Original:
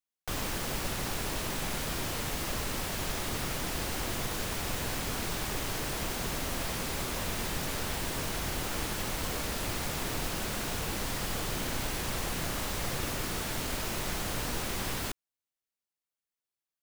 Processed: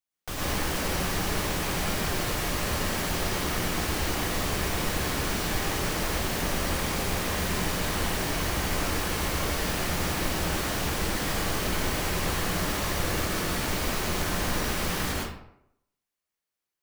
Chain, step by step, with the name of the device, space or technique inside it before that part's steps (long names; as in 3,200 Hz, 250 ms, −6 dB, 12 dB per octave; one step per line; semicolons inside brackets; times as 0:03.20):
bathroom (convolution reverb RT60 0.75 s, pre-delay 103 ms, DRR −5 dB)